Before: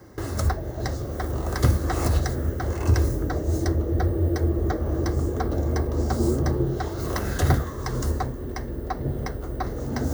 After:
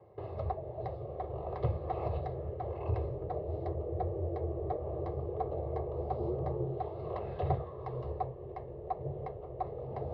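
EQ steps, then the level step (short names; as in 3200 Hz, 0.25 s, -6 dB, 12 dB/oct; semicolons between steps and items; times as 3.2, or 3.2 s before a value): air absorption 440 m; speaker cabinet 170–3300 Hz, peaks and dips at 190 Hz -6 dB, 310 Hz -10 dB, 540 Hz -3 dB, 900 Hz -4 dB, 1900 Hz -9 dB, 3200 Hz -6 dB; fixed phaser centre 610 Hz, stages 4; 0.0 dB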